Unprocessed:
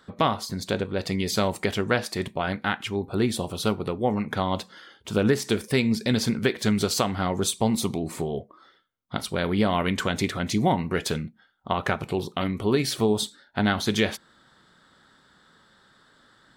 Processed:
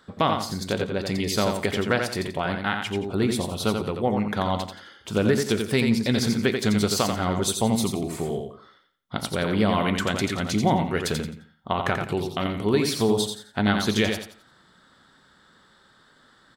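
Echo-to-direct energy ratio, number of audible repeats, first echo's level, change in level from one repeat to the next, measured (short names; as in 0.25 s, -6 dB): -5.0 dB, 3, -5.5 dB, -11.0 dB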